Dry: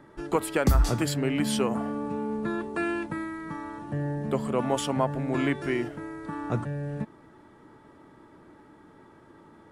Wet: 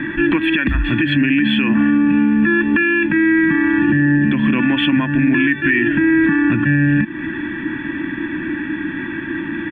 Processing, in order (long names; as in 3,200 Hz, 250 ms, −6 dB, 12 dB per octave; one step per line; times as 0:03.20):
high shelf with overshoot 4,400 Hz −13.5 dB, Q 3
comb filter 1.2 ms, depth 79%
hollow resonant body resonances 330/1,800/3,400 Hz, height 11 dB
downward compressor 10 to 1, threshold −33 dBFS, peak gain reduction 21 dB
drawn EQ curve 120 Hz 0 dB, 290 Hz +11 dB, 740 Hz −15 dB, 1,100 Hz +2 dB, 1,600 Hz +11 dB, 2,500 Hz +12 dB, 5,200 Hz −16 dB, 7,900 Hz −13 dB
boost into a limiter +23.5 dB
level that may rise only so fast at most 260 dB per second
level −6 dB